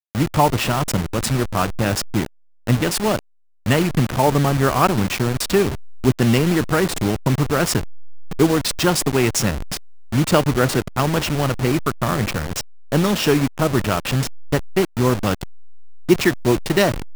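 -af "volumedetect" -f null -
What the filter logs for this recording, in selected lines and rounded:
mean_volume: -19.5 dB
max_volume: -1.9 dB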